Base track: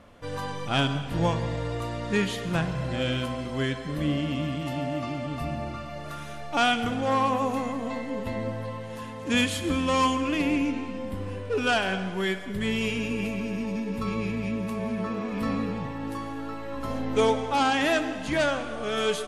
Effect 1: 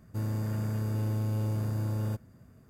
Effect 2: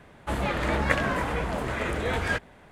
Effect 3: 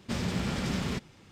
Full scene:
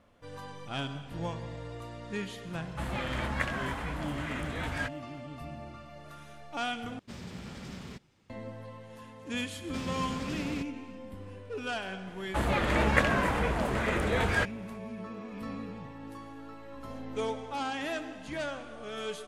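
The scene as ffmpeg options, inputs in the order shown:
ffmpeg -i bed.wav -i cue0.wav -i cue1.wav -i cue2.wav -filter_complex "[2:a]asplit=2[link_01][link_02];[3:a]asplit=2[link_03][link_04];[0:a]volume=-11dB[link_05];[link_01]equalizer=frequency=440:width_type=o:width=0.94:gain=-8.5[link_06];[link_05]asplit=2[link_07][link_08];[link_07]atrim=end=6.994[link_09];[link_03]atrim=end=1.31,asetpts=PTS-STARTPTS,volume=-12dB[link_10];[link_08]atrim=start=8.296[link_11];[link_06]atrim=end=2.71,asetpts=PTS-STARTPTS,volume=-6.5dB,afade=type=in:duration=0.004:curve=hsin,afade=type=out:start_time=2.706:duration=0.004:curve=hsin,adelay=2500[link_12];[link_04]atrim=end=1.31,asetpts=PTS-STARTPTS,volume=-6.5dB,afade=type=in:duration=0.004:curve=hsin,afade=type=out:start_time=1.306:duration=0.004:curve=hsin,adelay=9640[link_13];[link_02]atrim=end=2.71,asetpts=PTS-STARTPTS,volume=-0.5dB,afade=type=in:duration=0.004:curve=hsin,afade=type=out:start_time=2.706:duration=0.004:curve=hsin,adelay=12070[link_14];[link_09][link_10]acrossfade=duration=0.004:curve1=hsin:curve2=hsin[link_15];[link_15][link_11]acrossfade=duration=0.004:curve1=hsin:curve2=hsin[link_16];[link_16][link_12][link_13][link_14]amix=inputs=4:normalize=0" out.wav

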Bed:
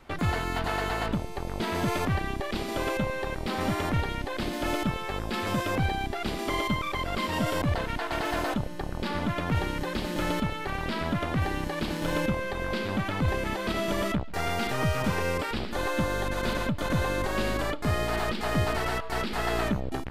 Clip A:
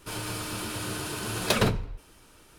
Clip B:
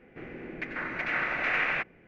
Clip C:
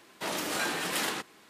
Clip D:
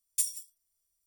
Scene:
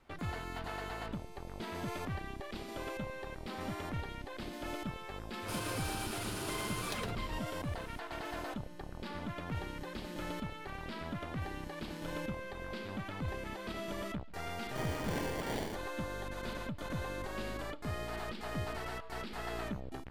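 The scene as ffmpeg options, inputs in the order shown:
ffmpeg -i bed.wav -i cue0.wav -i cue1.wav -i cue2.wav -filter_complex "[0:a]volume=-12dB[link_01];[1:a]acompressor=threshold=-33dB:ratio=6:attack=3.2:release=140:knee=1:detection=peak[link_02];[3:a]acrusher=samples=34:mix=1:aa=0.000001[link_03];[link_02]atrim=end=2.58,asetpts=PTS-STARTPTS,volume=-3dB,afade=type=in:duration=0.004:curve=hsin,afade=type=out:start_time=2.576:duration=0.004:curve=hsin,adelay=5420[link_04];[link_03]atrim=end=1.49,asetpts=PTS-STARTPTS,volume=-7dB,afade=type=in:duration=0.004:curve=hsin,afade=type=out:start_time=1.486:duration=0.004:curve=hsin,adelay=14540[link_05];[link_01][link_04][link_05]amix=inputs=3:normalize=0" out.wav

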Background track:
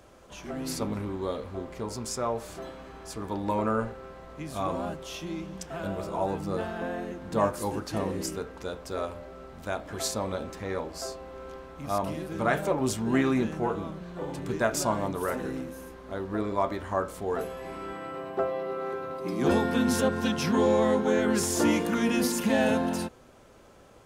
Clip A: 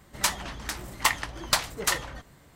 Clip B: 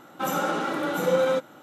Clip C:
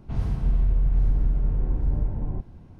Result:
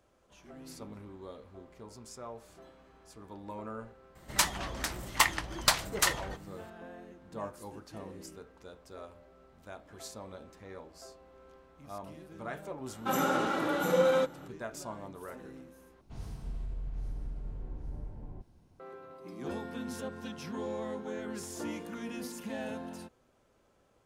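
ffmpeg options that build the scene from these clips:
ffmpeg -i bed.wav -i cue0.wav -i cue1.wav -i cue2.wav -filter_complex "[0:a]volume=-14.5dB[link_01];[3:a]bass=frequency=250:gain=-5,treble=frequency=4000:gain=13[link_02];[link_01]asplit=2[link_03][link_04];[link_03]atrim=end=16.014[link_05];[link_02]atrim=end=2.79,asetpts=PTS-STARTPTS,volume=-12dB[link_06];[link_04]atrim=start=18.796[link_07];[1:a]atrim=end=2.55,asetpts=PTS-STARTPTS,volume=-1.5dB,afade=type=in:duration=0.004:curve=hsin,afade=type=out:start_time=2.546:duration=0.004:curve=hsin,adelay=4150[link_08];[2:a]atrim=end=1.62,asetpts=PTS-STARTPTS,volume=-3.5dB,afade=type=in:duration=0.004:curve=hsin,afade=type=out:start_time=1.616:duration=0.004:curve=hsin,adelay=12860[link_09];[link_05][link_06]acrossfade=duration=0.004:curve1=hsin:curve2=hsin[link_10];[link_10][link_07]acrossfade=duration=0.004:curve1=hsin:curve2=hsin[link_11];[link_11][link_08][link_09]amix=inputs=3:normalize=0" out.wav

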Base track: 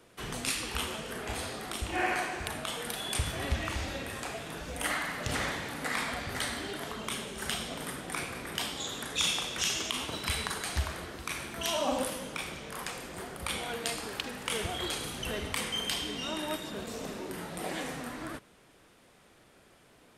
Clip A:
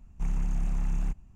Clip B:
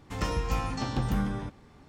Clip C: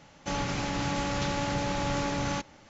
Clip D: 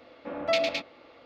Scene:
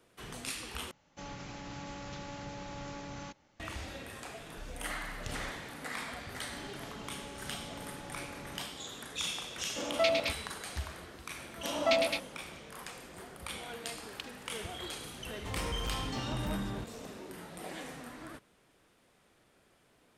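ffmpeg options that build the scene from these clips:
ffmpeg -i bed.wav -i cue0.wav -i cue1.wav -i cue2.wav -i cue3.wav -filter_complex "[3:a]asplit=2[link_01][link_02];[4:a]asplit=2[link_03][link_04];[0:a]volume=-7dB[link_05];[1:a]acompressor=threshold=-30dB:ratio=6:attack=3.2:release=140:knee=1:detection=peak[link_06];[link_04]bandreject=frequency=470:width=5.3[link_07];[2:a]volume=29dB,asoftclip=hard,volume=-29dB[link_08];[link_05]asplit=2[link_09][link_10];[link_09]atrim=end=0.914[link_11];[link_01]atrim=end=2.69,asetpts=PTS-STARTPTS,volume=-13.5dB[link_12];[link_10]atrim=start=3.596[link_13];[link_06]atrim=end=1.35,asetpts=PTS-STARTPTS,volume=-13dB,afade=type=in:duration=0.004:curve=hsin,afade=type=out:start_time=1.346:duration=0.004:curve=hsin,adelay=4380[link_14];[link_02]atrim=end=2.69,asetpts=PTS-STARTPTS,volume=-18dB,afade=type=in:duration=0.004:curve=hsin,afade=type=out:start_time=2.686:duration=0.004:curve=hsin,adelay=6250[link_15];[link_03]atrim=end=1.25,asetpts=PTS-STARTPTS,volume=-2.5dB,afade=type=in:duration=0.004:curve=hsin,afade=type=out:start_time=1.246:duration=0.004:curve=hsin,adelay=9510[link_16];[link_07]atrim=end=1.25,asetpts=PTS-STARTPTS,volume=-2dB,afade=type=in:duration=0.004:curve=hsin,afade=type=out:start_time=1.246:duration=0.004:curve=hsin,adelay=501858S[link_17];[link_08]atrim=end=1.88,asetpts=PTS-STARTPTS,volume=-4dB,afade=type=in:duration=0.004:curve=hsin,afade=type=out:start_time=1.876:duration=0.004:curve=hsin,adelay=15350[link_18];[link_11][link_12]acrossfade=duration=0.004:curve1=hsin:curve2=hsin[link_19];[link_19][link_13]acrossfade=duration=0.004:curve1=hsin:curve2=hsin[link_20];[link_20][link_14][link_15][link_16][link_17][link_18]amix=inputs=6:normalize=0" out.wav

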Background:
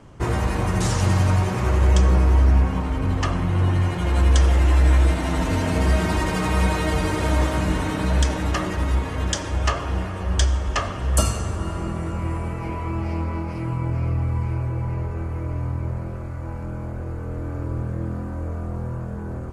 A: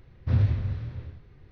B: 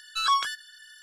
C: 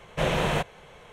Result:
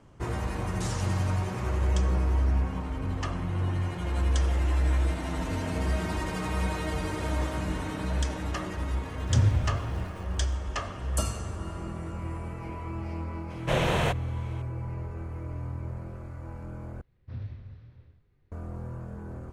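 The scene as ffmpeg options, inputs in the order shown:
ffmpeg -i bed.wav -i cue0.wav -i cue1.wav -i cue2.wav -filter_complex "[1:a]asplit=2[link_01][link_02];[0:a]volume=-9dB[link_03];[link_01]aeval=exprs='val(0)*gte(abs(val(0)),0.00501)':channel_layout=same[link_04];[link_03]asplit=2[link_05][link_06];[link_05]atrim=end=17.014[link_07];[link_02]atrim=end=1.51,asetpts=PTS-STARTPTS,volume=-15.5dB[link_08];[link_06]atrim=start=18.516[link_09];[link_04]atrim=end=1.51,asetpts=PTS-STARTPTS,afade=type=in:duration=0.004:curve=hsin,afade=type=out:start_time=1.506:duration=0.004:curve=hsin,adelay=9030[link_10];[3:a]atrim=end=1.12,asetpts=PTS-STARTPTS,volume=-1dB,afade=type=in:duration=0.004:curve=hsin,afade=type=out:start_time=1.116:duration=0.004:curve=hsin,adelay=13500[link_11];[link_07][link_08]acrossfade=duration=0.004:curve1=hsin:curve2=hsin[link_12];[link_12][link_09]acrossfade=duration=0.004:curve1=hsin:curve2=hsin[link_13];[link_13][link_10][link_11]amix=inputs=3:normalize=0" out.wav

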